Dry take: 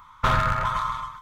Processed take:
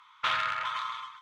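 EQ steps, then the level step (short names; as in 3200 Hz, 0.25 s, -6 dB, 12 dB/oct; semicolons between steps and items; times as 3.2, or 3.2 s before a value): band-pass 2900 Hz, Q 1.6; +3.0 dB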